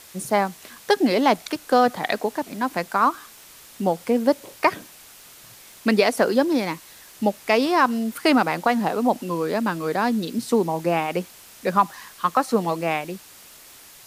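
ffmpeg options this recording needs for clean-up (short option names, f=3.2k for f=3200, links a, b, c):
-af "adeclick=t=4,afwtdn=0.0056"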